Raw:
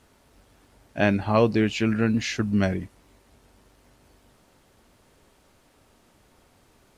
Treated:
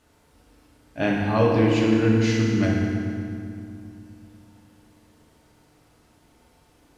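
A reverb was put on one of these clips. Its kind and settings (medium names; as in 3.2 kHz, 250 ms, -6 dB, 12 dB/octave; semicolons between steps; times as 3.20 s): FDN reverb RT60 2.5 s, low-frequency decay 1.45×, high-frequency decay 0.75×, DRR -3.5 dB; trim -4.5 dB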